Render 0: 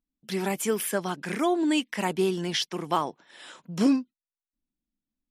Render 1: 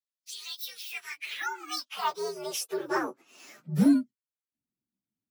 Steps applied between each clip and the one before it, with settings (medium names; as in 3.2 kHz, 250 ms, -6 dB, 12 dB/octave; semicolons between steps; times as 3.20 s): frequency axis rescaled in octaves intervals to 122%; high-pass sweep 4 kHz -> 100 Hz, 0.61–4.20 s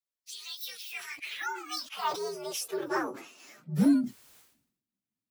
decay stretcher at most 80 dB/s; trim -2 dB